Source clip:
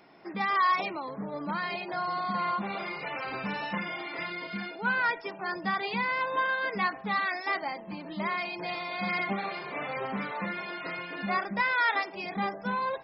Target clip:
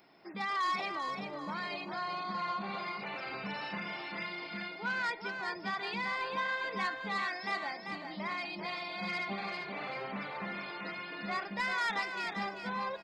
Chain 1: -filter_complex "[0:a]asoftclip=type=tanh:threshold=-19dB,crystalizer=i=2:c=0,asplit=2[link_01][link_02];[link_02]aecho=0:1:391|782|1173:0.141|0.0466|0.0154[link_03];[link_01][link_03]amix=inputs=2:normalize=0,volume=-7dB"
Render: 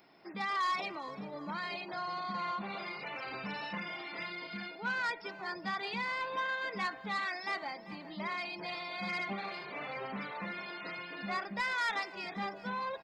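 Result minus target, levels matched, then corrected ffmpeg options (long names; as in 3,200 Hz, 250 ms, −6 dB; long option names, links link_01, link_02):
echo-to-direct −11 dB
-filter_complex "[0:a]asoftclip=type=tanh:threshold=-19dB,crystalizer=i=2:c=0,asplit=2[link_01][link_02];[link_02]aecho=0:1:391|782|1173|1564:0.501|0.165|0.0546|0.018[link_03];[link_01][link_03]amix=inputs=2:normalize=0,volume=-7dB"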